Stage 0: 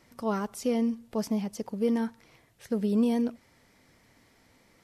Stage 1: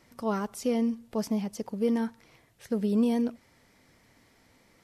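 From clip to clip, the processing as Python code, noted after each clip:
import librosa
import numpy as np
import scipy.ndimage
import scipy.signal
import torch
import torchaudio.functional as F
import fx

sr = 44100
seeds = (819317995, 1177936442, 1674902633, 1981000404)

y = x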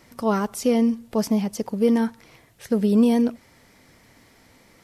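y = fx.high_shelf(x, sr, hz=12000.0, db=3.5)
y = y * 10.0 ** (7.5 / 20.0)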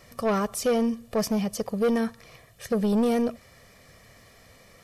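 y = x + 0.6 * np.pad(x, (int(1.7 * sr / 1000.0), 0))[:len(x)]
y = 10.0 ** (-18.0 / 20.0) * np.tanh(y / 10.0 ** (-18.0 / 20.0))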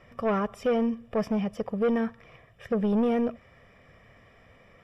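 y = scipy.signal.savgol_filter(x, 25, 4, mode='constant')
y = y * 10.0 ** (-1.5 / 20.0)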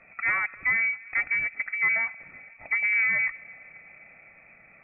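y = fx.freq_invert(x, sr, carrier_hz=2500)
y = fx.echo_thinned(y, sr, ms=257, feedback_pct=78, hz=880.0, wet_db=-22.5)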